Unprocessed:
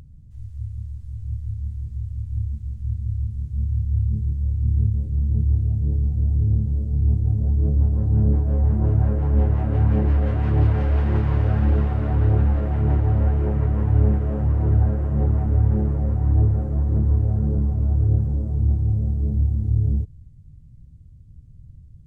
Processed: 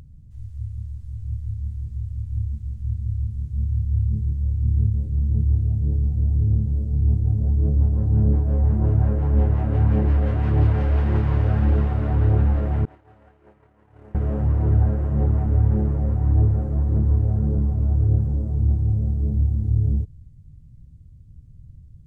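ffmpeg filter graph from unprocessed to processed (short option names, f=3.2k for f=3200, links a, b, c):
-filter_complex "[0:a]asettb=1/sr,asplit=3[a][b][c];[a]atrim=end=12.854[d];[b]atrim=start=12.85:end=14.15,asetpts=PTS-STARTPTS,afade=t=in:d=0.004:c=qsin,afade=t=out:st=1.296:d=0.004:c=qsin,highpass=f=1k:p=1,agate=range=-33dB:threshold=-26dB:ratio=3:release=100:detection=peak,asplit=2[e][f];[f]adelay=25,volume=-13dB[g];[e][g]amix=inputs=2:normalize=0,atrim=end_sample=57330[h];[c]atrim=start=14.146[i];[d][h]acrossfade=d=0.004:c1=hsin:c2=qsin[j];[j][i]acrossfade=d=0.004:c1=qsin:c2=hsin"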